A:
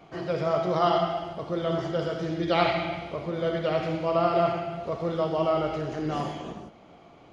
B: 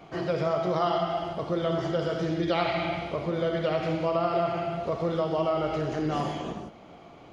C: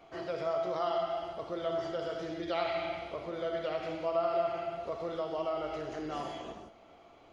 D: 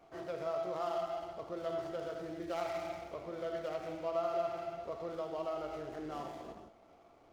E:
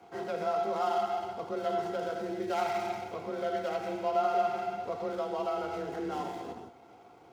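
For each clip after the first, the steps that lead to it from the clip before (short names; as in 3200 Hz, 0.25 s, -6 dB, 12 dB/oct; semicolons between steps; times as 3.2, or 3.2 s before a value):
compressor 3:1, threshold -27 dBFS, peak gain reduction 8 dB; gain +3 dB
bell 160 Hz -10.5 dB 1.1 oct; resonator 670 Hz, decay 0.27 s, mix 70%; gain +2.5 dB
median filter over 15 samples; gain -4 dB
notch comb 580 Hz; frequency shift +29 Hz; gain +8 dB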